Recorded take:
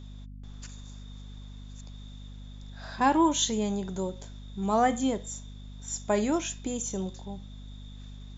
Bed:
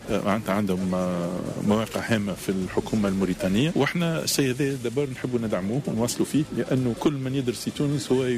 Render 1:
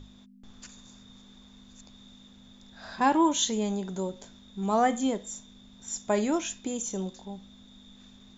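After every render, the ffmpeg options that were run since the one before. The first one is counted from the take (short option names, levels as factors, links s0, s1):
-af "bandreject=f=50:t=h:w=6,bandreject=f=100:t=h:w=6,bandreject=f=150:t=h:w=6"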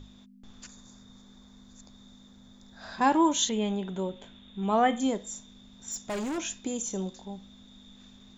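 -filter_complex "[0:a]asettb=1/sr,asplit=3[s0][s1][s2];[s0]atrim=end=0.674[s3];[s1]atrim=start=0.67:end=2.81,asetpts=PTS-STARTPTS,afade=t=in:d=0.004:c=qsin,afade=t=out:st=2.136:d=0.004:c=qsin,equalizer=f=2800:w=2.3:g=-9[s4];[s2]atrim=start=2.806[s5];[s3][s4]acrossfade=d=0.004:c1=hsin:c2=qsin[s6];[s6][s5]acrossfade=d=0.004:c1=qsin:c2=hsin,asettb=1/sr,asplit=3[s7][s8][s9];[s7]atrim=end=3.494[s10];[s8]atrim=start=3.49:end=5,asetpts=PTS-STARTPTS,afade=t=in:d=0.004:c=qsin,afade=t=out:st=1.506:d=0.004:c=qsin,highshelf=f=4000:t=q:w=3:g=-8[s11];[s9]atrim=start=4.996[s12];[s10][s11]acrossfade=d=0.004:c1=hsin:c2=qsin[s13];[s13][s12]acrossfade=d=0.004:c1=qsin:c2=hsin,asettb=1/sr,asplit=3[s14][s15][s16];[s14]atrim=end=5.914[s17];[s15]atrim=start=5.91:end=6.38,asetpts=PTS-STARTPTS,afade=t=in:d=0.004:c=qsin,afade=t=out:st=0.466:d=0.004:c=qsin,asoftclip=type=hard:threshold=0.0316[s18];[s16]atrim=start=6.376[s19];[s17][s18]acrossfade=d=0.004:c1=hsin:c2=qsin[s20];[s20][s19]acrossfade=d=0.004:c1=qsin:c2=hsin"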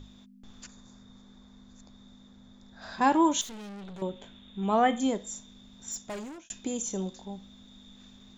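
-filter_complex "[0:a]asettb=1/sr,asplit=3[s0][s1][s2];[s0]atrim=end=0.664[s3];[s1]atrim=start=0.66:end=2.82,asetpts=PTS-STARTPTS,afade=t=in:d=0.004:c=qsin,afade=t=out:st=2.156:d=0.004:c=qsin,lowpass=f=3700:p=1[s4];[s2]atrim=start=2.816[s5];[s3][s4]acrossfade=d=0.004:c1=hsin:c2=qsin[s6];[s6][s5]acrossfade=d=0.004:c1=qsin:c2=hsin,asettb=1/sr,asplit=3[s7][s8][s9];[s7]atrim=end=3.414[s10];[s8]atrim=start=3.41:end=4.02,asetpts=PTS-STARTPTS,afade=t=in:d=0.004:c=qsin,afade=t=out:st=0.606:d=0.004:c=qsin,aeval=exprs='(tanh(112*val(0)+0.3)-tanh(0.3))/112':c=same[s11];[s9]atrim=start=4.016[s12];[s10][s11]acrossfade=d=0.004:c1=hsin:c2=qsin[s13];[s13][s12]acrossfade=d=0.004:c1=qsin:c2=hsin,asplit=2[s14][s15];[s14]atrim=end=6.5,asetpts=PTS-STARTPTS,afade=t=out:st=5.89:d=0.61[s16];[s15]atrim=start=6.5,asetpts=PTS-STARTPTS,afade=t=in:d=0.004:c=hsin[s17];[s16][s17]concat=n=2:v=0:a=1"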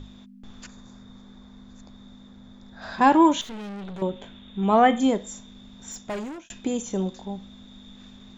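-filter_complex "[0:a]acrossover=split=3700[s0][s1];[s0]acontrast=69[s2];[s1]alimiter=level_in=2.24:limit=0.0631:level=0:latency=1:release=329,volume=0.447[s3];[s2][s3]amix=inputs=2:normalize=0"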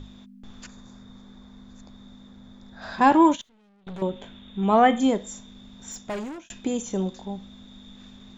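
-filter_complex "[0:a]asettb=1/sr,asplit=3[s0][s1][s2];[s0]atrim=end=3.114[s3];[s1]atrim=start=3.11:end=3.87,asetpts=PTS-STARTPTS,afade=t=in:d=0.004:c=qsin,afade=t=out:st=0.756:d=0.004:c=qsin,agate=range=0.0631:threshold=0.0398:ratio=16:release=100:detection=peak[s4];[s2]atrim=start=3.866[s5];[s3][s4]acrossfade=d=0.004:c1=hsin:c2=qsin[s6];[s6][s5]acrossfade=d=0.004:c1=qsin:c2=hsin"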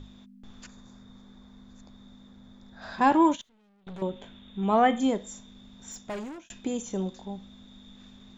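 -af "volume=0.631"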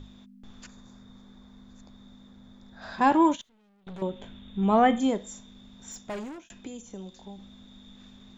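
-filter_complex "[0:a]asettb=1/sr,asplit=3[s0][s1][s2];[s0]atrim=end=4.194[s3];[s1]atrim=start=4.19:end=4.99,asetpts=PTS-STARTPTS,afade=t=in:d=0.004:c=qsin,afade=t=out:st=0.796:d=0.004:c=qsin,lowshelf=f=210:g=7[s4];[s2]atrim=start=4.986[s5];[s3][s4]acrossfade=d=0.004:c1=hsin:c2=qsin[s6];[s6][s5]acrossfade=d=0.004:c1=qsin:c2=hsin,asettb=1/sr,asplit=3[s7][s8][s9];[s7]atrim=end=6.424[s10];[s8]atrim=start=6.42:end=7.39,asetpts=PTS-STARTPTS,afade=t=in:d=0.004:c=qsin,afade=t=out:st=0.966:d=0.004:c=qsin,acrossover=split=110|250|2000[s11][s12][s13][s14];[s11]acompressor=threshold=0.00158:ratio=3[s15];[s12]acompressor=threshold=0.00398:ratio=3[s16];[s13]acompressor=threshold=0.00447:ratio=3[s17];[s14]acompressor=threshold=0.00251:ratio=3[s18];[s15][s16][s17][s18]amix=inputs=4:normalize=0[s19];[s9]atrim=start=7.386[s20];[s10][s19]acrossfade=d=0.004:c1=hsin:c2=qsin[s21];[s21][s20]acrossfade=d=0.004:c1=qsin:c2=hsin"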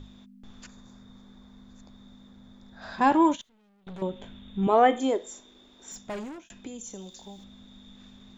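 -filter_complex "[0:a]asettb=1/sr,asplit=3[s0][s1][s2];[s0]atrim=end=4.674[s3];[s1]atrim=start=4.67:end=5.92,asetpts=PTS-STARTPTS,afade=t=in:d=0.004:c=qsin,afade=t=out:st=1.246:d=0.004:c=qsin,lowshelf=f=250:t=q:w=3:g=-10.5[s4];[s2]atrim=start=5.916[s5];[s3][s4]acrossfade=d=0.004:c1=hsin:c2=qsin[s6];[s6][s5]acrossfade=d=0.004:c1=qsin:c2=hsin,asettb=1/sr,asplit=3[s7][s8][s9];[s7]atrim=end=6.814[s10];[s8]atrim=start=6.81:end=7.44,asetpts=PTS-STARTPTS,afade=t=in:d=0.004:c=qsin,afade=t=out:st=0.626:d=0.004:c=qsin,bass=f=250:g=-3,treble=f=4000:g=12[s11];[s9]atrim=start=7.436[s12];[s10][s11]acrossfade=d=0.004:c1=hsin:c2=qsin[s13];[s13][s12]acrossfade=d=0.004:c1=qsin:c2=hsin"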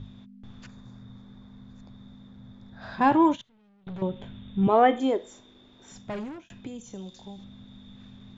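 -af "lowpass=4400,equalizer=f=120:w=1.8:g=13.5"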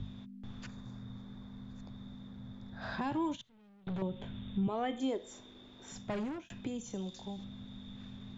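-filter_complex "[0:a]acrossover=split=200|3000[s0][s1][s2];[s1]acompressor=threshold=0.0251:ratio=3[s3];[s0][s3][s2]amix=inputs=3:normalize=0,alimiter=level_in=1.19:limit=0.0631:level=0:latency=1:release=380,volume=0.841"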